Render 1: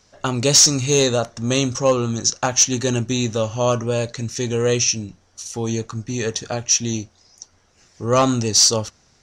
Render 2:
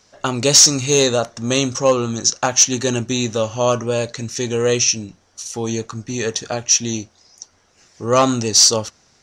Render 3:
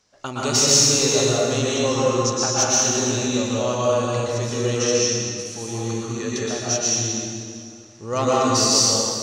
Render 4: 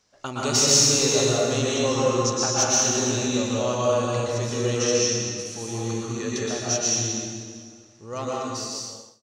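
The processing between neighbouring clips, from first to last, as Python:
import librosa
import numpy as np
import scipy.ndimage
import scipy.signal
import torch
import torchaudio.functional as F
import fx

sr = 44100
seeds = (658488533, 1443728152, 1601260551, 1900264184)

y1 = fx.low_shelf(x, sr, hz=130.0, db=-8.5)
y1 = y1 * librosa.db_to_amplitude(2.5)
y2 = fx.rev_plate(y1, sr, seeds[0], rt60_s=2.5, hf_ratio=0.75, predelay_ms=105, drr_db=-7.0)
y2 = y2 * librosa.db_to_amplitude(-10.0)
y3 = fx.fade_out_tail(y2, sr, length_s=2.22)
y3 = y3 * librosa.db_to_amplitude(-2.0)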